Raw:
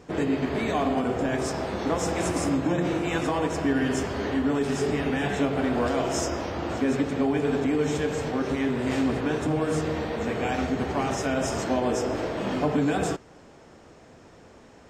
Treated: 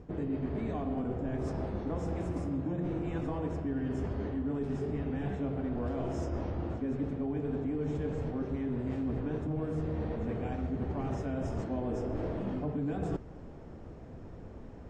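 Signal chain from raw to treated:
spectral tilt −4 dB per octave
reversed playback
downward compressor 6 to 1, threshold −27 dBFS, peak gain reduction 14 dB
reversed playback
level −4.5 dB

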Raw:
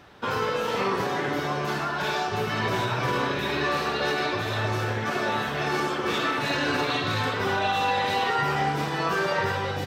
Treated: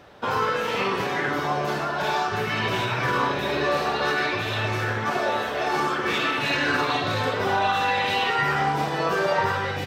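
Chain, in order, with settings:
0:05.19–0:05.76: parametric band 150 Hz −12.5 dB 0.75 octaves
auto-filter bell 0.55 Hz 540–2,800 Hz +7 dB

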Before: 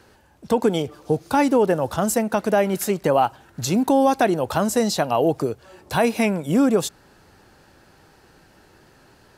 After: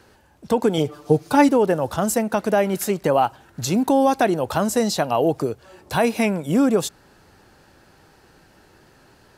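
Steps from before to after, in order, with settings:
0:00.77–0:01.49: comb filter 6.8 ms, depth 79%

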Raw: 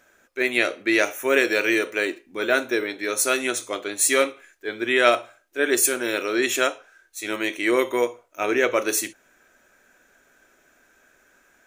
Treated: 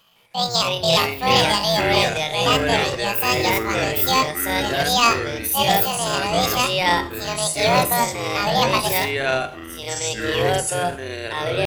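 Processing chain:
sub-octave generator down 2 octaves, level −1 dB
pitch shifter +11.5 semitones
delay with pitch and tempo change per echo 156 ms, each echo −5 semitones, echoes 3
level +1 dB

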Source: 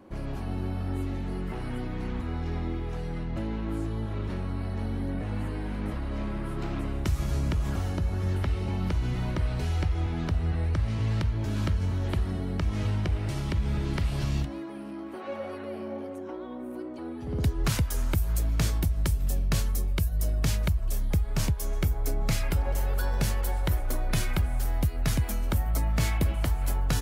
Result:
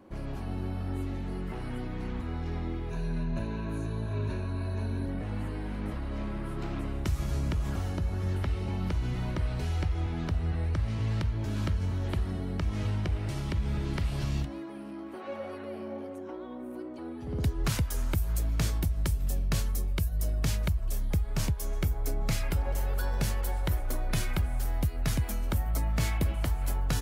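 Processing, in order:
0:02.90–0:05.06: EQ curve with evenly spaced ripples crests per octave 1.5, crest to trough 13 dB
level −2.5 dB

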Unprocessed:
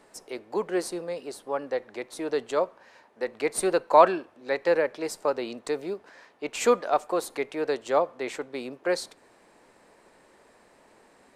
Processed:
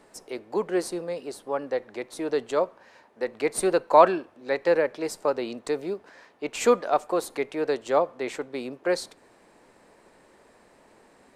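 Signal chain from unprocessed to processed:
low-shelf EQ 400 Hz +3.5 dB

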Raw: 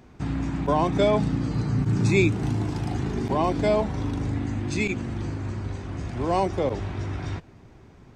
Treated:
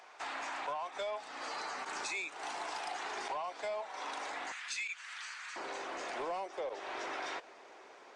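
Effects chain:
high-pass filter 660 Hz 24 dB per octave, from 0:04.52 1,400 Hz, from 0:05.56 490 Hz
downward compressor 8 to 1, threshold −39 dBFS, peak gain reduction 18.5 dB
soft clipping −35.5 dBFS, distortion −18 dB
level +4.5 dB
Nellymoser 44 kbit/s 22,050 Hz

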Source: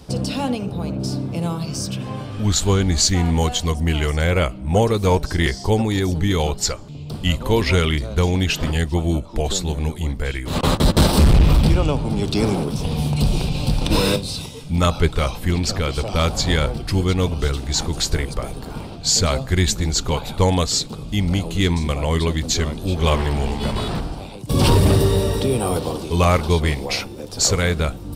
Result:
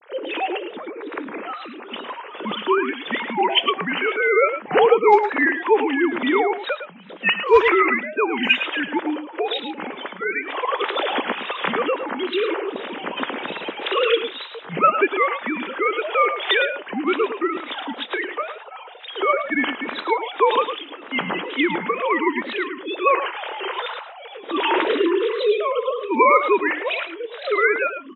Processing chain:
three sine waves on the formant tracks
high-pass filter 510 Hz 12 dB per octave
parametric band 690 Hz −8 dB 0.41 octaves
hard clipping −6.5 dBFS, distortion −35 dB
tape wow and flutter 140 cents
single-tap delay 108 ms −9.5 dB
level +2 dB
AAC 24 kbit/s 16,000 Hz

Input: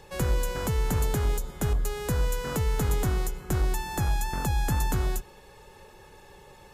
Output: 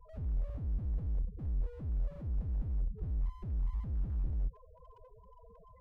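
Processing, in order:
spectral peaks only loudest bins 4
speed change +16%
slew-rate limiting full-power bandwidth 1.5 Hz

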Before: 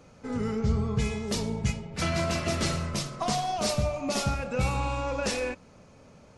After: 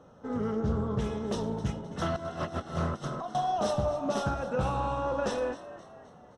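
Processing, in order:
spectral tilt +2.5 dB per octave
0:02.16–0:03.35: compressor whose output falls as the input rises −34 dBFS, ratio −0.5
moving average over 19 samples
echo with shifted repeats 261 ms, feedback 47%, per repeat +76 Hz, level −15.5 dB
highs frequency-modulated by the lows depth 0.22 ms
level +4 dB

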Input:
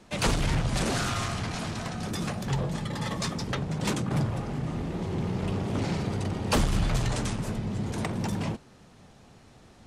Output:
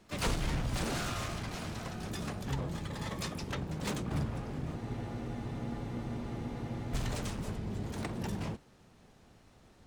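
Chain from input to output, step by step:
pitch-shifted copies added −12 semitones −6 dB, +12 semitones −10 dB
frozen spectrum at 0:04.78, 2.16 s
level −8 dB

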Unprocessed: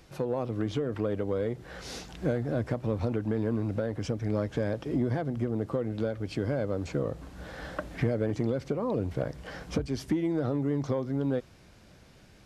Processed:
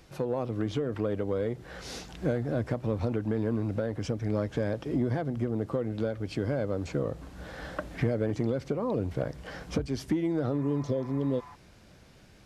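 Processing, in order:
healed spectral selection 0:10.61–0:11.52, 710–2,600 Hz before

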